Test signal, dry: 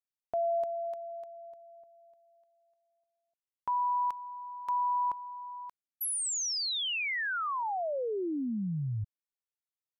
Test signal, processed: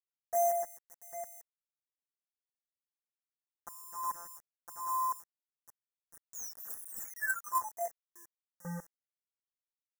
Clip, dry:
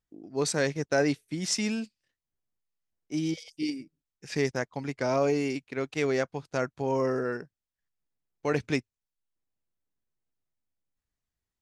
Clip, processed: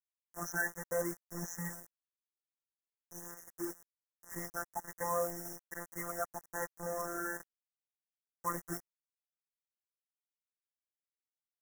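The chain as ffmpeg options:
ffmpeg -i in.wav -filter_complex "[0:a]afftfilt=real='re*pow(10,19/40*sin(2*PI*(1*log(max(b,1)*sr/1024/100)/log(2)-(1.2)*(pts-256)/sr)))':imag='im*pow(10,19/40*sin(2*PI*(1*log(max(b,1)*sr/1024/100)/log(2)-(1.2)*(pts-256)/sr)))':win_size=1024:overlap=0.75,acrossover=split=3800[link_01][link_02];[link_02]acompressor=threshold=-44dB:ratio=4:attack=1:release=60[link_03];[link_01][link_03]amix=inputs=2:normalize=0,lowpass=8300,lowshelf=frequency=640:width_type=q:width=1.5:gain=-7,afftfilt=real='hypot(re,im)*cos(PI*b)':imag='0':win_size=1024:overlap=0.75,acrusher=bits=2:mode=log:mix=0:aa=0.000001,crystalizer=i=1:c=0,acrusher=bits=5:mix=0:aa=0.000001,asuperstop=centerf=3300:order=20:qfactor=0.92,volume=-6dB" out.wav

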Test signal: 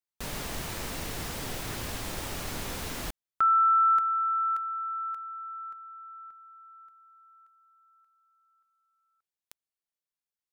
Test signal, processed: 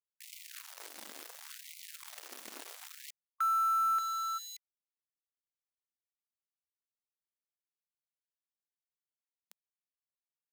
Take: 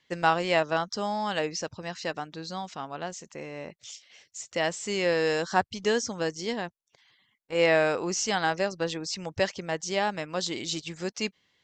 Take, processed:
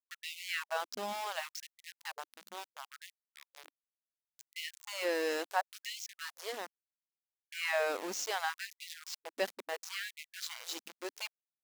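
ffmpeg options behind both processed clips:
ffmpeg -i in.wav -af "aeval=exprs='val(0)*gte(abs(val(0)),0.0335)':channel_layout=same,afftfilt=real='re*gte(b*sr/1024,200*pow(2000/200,0.5+0.5*sin(2*PI*0.71*pts/sr)))':imag='im*gte(b*sr/1024,200*pow(2000/200,0.5+0.5*sin(2*PI*0.71*pts/sr)))':win_size=1024:overlap=0.75,volume=-7.5dB" out.wav

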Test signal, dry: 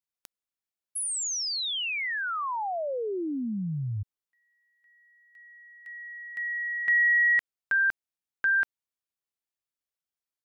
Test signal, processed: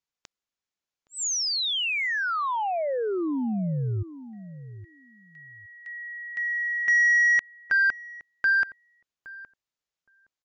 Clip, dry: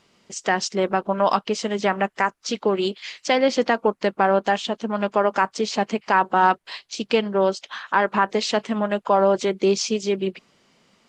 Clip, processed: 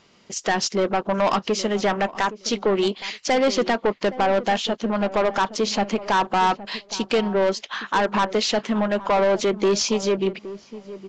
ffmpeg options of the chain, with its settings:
ffmpeg -i in.wav -filter_complex "[0:a]aresample=16000,asoftclip=type=tanh:threshold=-18.5dB,aresample=44100,asplit=2[link_01][link_02];[link_02]adelay=817,lowpass=frequency=840:poles=1,volume=-14dB,asplit=2[link_03][link_04];[link_04]adelay=817,lowpass=frequency=840:poles=1,volume=0.17[link_05];[link_01][link_03][link_05]amix=inputs=3:normalize=0,volume=4dB" out.wav

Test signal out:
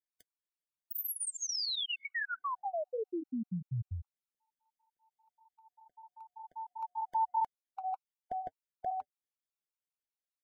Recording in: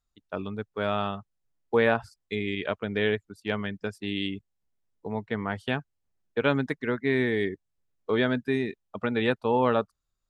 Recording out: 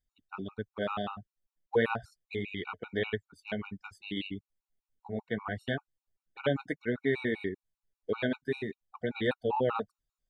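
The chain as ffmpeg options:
ffmpeg -i in.wav -af "flanger=delay=0.6:depth=5.4:regen=-48:speed=1.6:shape=sinusoidal,afftfilt=real='re*gt(sin(2*PI*5.1*pts/sr)*(1-2*mod(floor(b*sr/1024/740),2)),0)':imag='im*gt(sin(2*PI*5.1*pts/sr)*(1-2*mod(floor(b*sr/1024/740),2)),0)':win_size=1024:overlap=0.75,volume=1dB" out.wav

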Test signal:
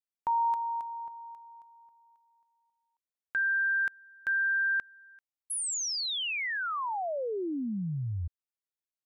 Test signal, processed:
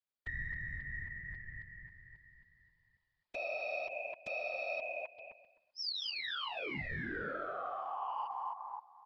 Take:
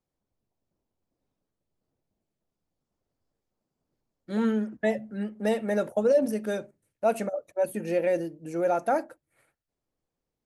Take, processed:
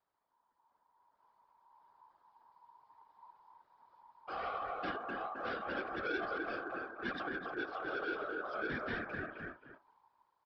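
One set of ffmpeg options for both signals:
ffmpeg -i in.wav -filter_complex "[0:a]asubboost=boost=4.5:cutoff=81,asplit=2[link_01][link_02];[link_02]adelay=258,lowpass=frequency=1100:poles=1,volume=-6dB,asplit=2[link_03][link_04];[link_04]adelay=258,lowpass=frequency=1100:poles=1,volume=0.2,asplit=2[link_05][link_06];[link_06]adelay=258,lowpass=frequency=1100:poles=1,volume=0.2[link_07];[link_01][link_03][link_05][link_07]amix=inputs=4:normalize=0,aeval=exprs='val(0)*sin(2*PI*950*n/s)':channel_layout=same,dynaudnorm=framelen=450:gausssize=7:maxgain=9dB,aresample=11025,asoftclip=type=tanh:threshold=-16.5dB,aresample=44100,acompressor=threshold=-39dB:ratio=5:attack=0.37:release=93:knee=6:detection=peak,afftfilt=real='hypot(re,im)*cos(2*PI*random(0))':imag='hypot(re,im)*sin(2*PI*random(1))':win_size=512:overlap=0.75,bandreject=frequency=2700:width=18,volume=7.5dB" out.wav

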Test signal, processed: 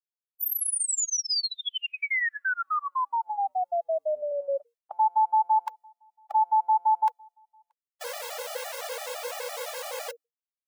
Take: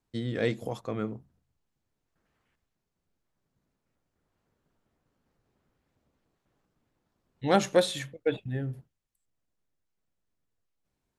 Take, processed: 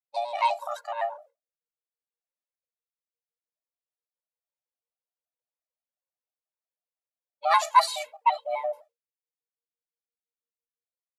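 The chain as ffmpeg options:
ffmpeg -i in.wav -af "afreqshift=470,agate=range=-33dB:threshold=-48dB:ratio=3:detection=peak,afftfilt=real='re*gt(sin(2*PI*5.9*pts/sr)*(1-2*mod(floor(b*sr/1024/280),2)),0)':imag='im*gt(sin(2*PI*5.9*pts/sr)*(1-2*mod(floor(b*sr/1024/280),2)),0)':win_size=1024:overlap=0.75,volume=6dB" out.wav

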